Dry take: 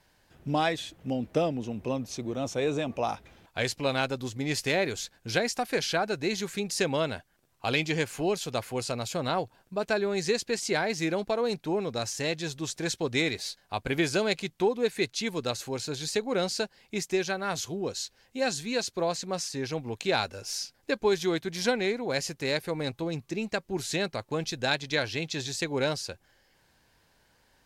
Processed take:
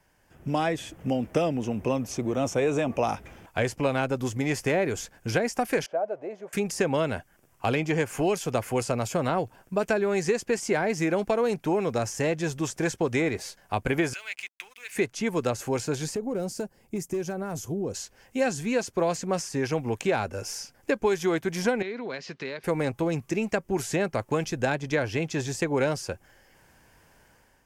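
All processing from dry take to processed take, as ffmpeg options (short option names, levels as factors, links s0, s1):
-filter_complex "[0:a]asettb=1/sr,asplit=3[s0][s1][s2];[s0]atrim=end=5.864[s3];[s1]atrim=start=5.86:end=6.53,asetpts=PTS-STARTPTS,afade=t=in:d=0.004:c=qsin,afade=t=out:st=0.666:d=0.004:c=qsin,aeval=exprs='val(0)+0.5*0.0106*sgn(val(0))':c=same,bandpass=f=610:t=q:w=5.8[s4];[s2]atrim=start=6.526[s5];[s3][s4]acrossfade=d=0.004:c1=hsin:c2=qsin[s6];[s6][s5]acrossfade=d=0.004:c1=qsin:c2=hsin,asettb=1/sr,asplit=3[s7][s8][s9];[s7]atrim=end=14.134[s10];[s8]atrim=start=14.13:end=14.95,asetpts=PTS-STARTPTS,afade=t=in:d=0.004:c=qsin,afade=t=out:st=0.816:d=0.004:c=qsin,acompressor=threshold=0.0224:ratio=3:attack=3.2:release=140:knee=1:detection=peak,highpass=f=2300:t=q:w=2.2,aeval=exprs='sgn(val(0))*max(abs(val(0))-0.00112,0)':c=same[s11];[s9]atrim=start=14.946[s12];[s10][s11]acrossfade=d=0.004:c1=hsin:c2=qsin[s13];[s13][s12]acrossfade=d=0.004:c1=qsin:c2=hsin,asettb=1/sr,asplit=3[s14][s15][s16];[s14]atrim=end=16.154[s17];[s15]atrim=start=16.15:end=17.94,asetpts=PTS-STARTPTS,afade=t=in:d=0.004:c=qsin,afade=t=out:st=1.786:d=0.004:c=qsin,asoftclip=type=hard:threshold=0.0794,acompressor=threshold=0.0316:ratio=4:attack=3.2:release=140:knee=1:detection=peak,equalizer=f=2500:w=0.34:g=-14.5[s18];[s16]atrim=start=17.936[s19];[s17][s18]acrossfade=d=0.004:c1=hsin:c2=qsin[s20];[s20][s19]acrossfade=d=0.004:c1=qsin:c2=hsin,asettb=1/sr,asplit=3[s21][s22][s23];[s21]atrim=end=21.824[s24];[s22]atrim=start=21.82:end=22.64,asetpts=PTS-STARTPTS,afade=t=in:d=0.004:c=qsin,afade=t=out:st=0.816:d=0.004:c=qsin,acompressor=threshold=0.02:ratio=5:attack=3.2:release=140:knee=1:detection=peak,highpass=230,equalizer=f=310:t=q:w=4:g=-7,equalizer=f=530:t=q:w=4:g=-6,equalizer=f=790:t=q:w=4:g=-8,equalizer=f=4000:t=q:w=4:g=10,lowpass=f=4600:w=0.5412,lowpass=f=4600:w=1.3066[s25];[s23]atrim=start=22.636[s26];[s24][s25]acrossfade=d=0.004:c1=hsin:c2=qsin[s27];[s27][s26]acrossfade=d=0.004:c1=qsin:c2=hsin,acrossover=split=510|1500[s28][s29][s30];[s28]acompressor=threshold=0.02:ratio=4[s31];[s29]acompressor=threshold=0.0158:ratio=4[s32];[s30]acompressor=threshold=0.01:ratio=4[s33];[s31][s32][s33]amix=inputs=3:normalize=0,equalizer=f=4000:w=3:g=-13.5,dynaudnorm=f=180:g=5:m=2.51"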